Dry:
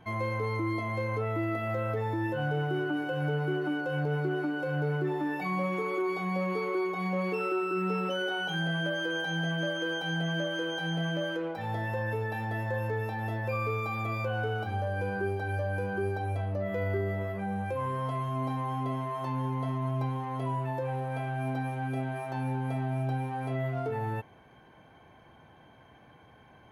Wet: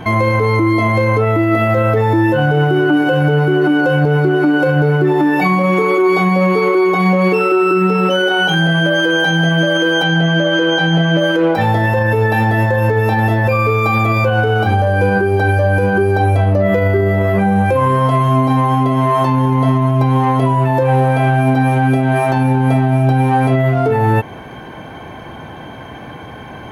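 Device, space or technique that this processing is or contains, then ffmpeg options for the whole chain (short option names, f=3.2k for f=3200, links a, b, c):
mastering chain: -filter_complex "[0:a]equalizer=f=280:t=o:w=1.1:g=2.5,acompressor=threshold=-35dB:ratio=2,alimiter=level_in=28.5dB:limit=-1dB:release=50:level=0:latency=1,asettb=1/sr,asplit=3[a][b][c];[a]atrim=end=10.034[d];[b]atrim=start=10.03:end=11.18,asetpts=PTS-STARTPTS,afade=t=in:d=0.004:c=qsin,afade=t=out:st=1.146:d=0.004:c=qsin,lowpass=5.8k[e];[c]atrim=start=11.176[f];[d][e]acrossfade=d=0.004:c1=hsin:c2=qsin[g];[g][f]acrossfade=d=0.004:c1=qsin:c2=hsin,volume=-4.5dB"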